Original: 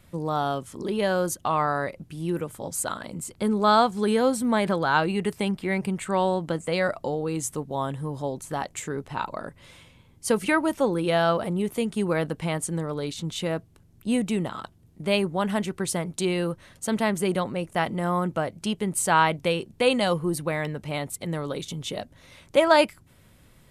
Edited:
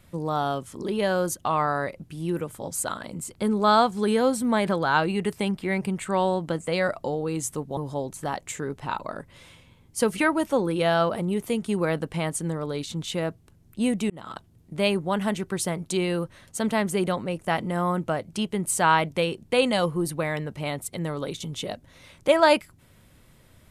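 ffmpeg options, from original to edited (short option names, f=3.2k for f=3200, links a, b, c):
-filter_complex "[0:a]asplit=3[a][b][c];[a]atrim=end=7.772[d];[b]atrim=start=8.048:end=14.38,asetpts=PTS-STARTPTS,afade=t=out:st=6.328:d=0.004:c=hsin[e];[c]atrim=start=14.38,asetpts=PTS-STARTPTS,afade=t=in:d=0.26[f];[e][f]concat=n=2:v=0:a=1[g];[d][g]acrossfade=d=0.004:c1=hsin:c2=hsin"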